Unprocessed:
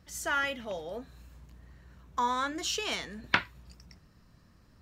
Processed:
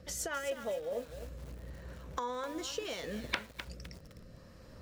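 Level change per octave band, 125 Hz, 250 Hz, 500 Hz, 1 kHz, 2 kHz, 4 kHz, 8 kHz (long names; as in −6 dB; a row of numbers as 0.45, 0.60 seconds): +1.0, −3.0, +1.5, −9.5, −9.5, −7.0, −2.5 decibels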